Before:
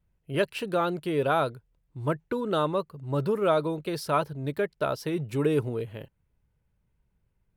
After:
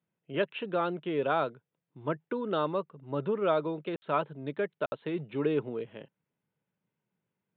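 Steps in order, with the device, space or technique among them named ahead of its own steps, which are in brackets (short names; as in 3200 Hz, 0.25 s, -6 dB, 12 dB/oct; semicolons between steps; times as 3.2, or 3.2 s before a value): call with lost packets (HPF 160 Hz 24 dB/oct; downsampling 8000 Hz; packet loss packets of 60 ms bursts); gain -3.5 dB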